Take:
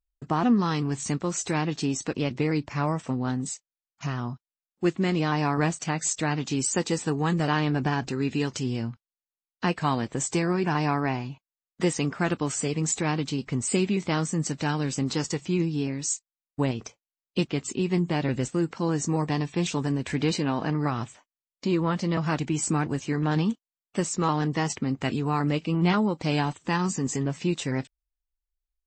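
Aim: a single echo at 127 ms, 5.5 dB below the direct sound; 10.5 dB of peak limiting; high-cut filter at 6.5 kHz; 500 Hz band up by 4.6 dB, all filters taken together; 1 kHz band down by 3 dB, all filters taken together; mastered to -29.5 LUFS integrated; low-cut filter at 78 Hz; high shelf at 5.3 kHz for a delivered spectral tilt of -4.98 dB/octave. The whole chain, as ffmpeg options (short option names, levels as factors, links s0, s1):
-af "highpass=78,lowpass=6500,equalizer=f=500:t=o:g=7.5,equalizer=f=1000:t=o:g=-7,highshelf=f=5300:g=6,alimiter=limit=0.1:level=0:latency=1,aecho=1:1:127:0.531"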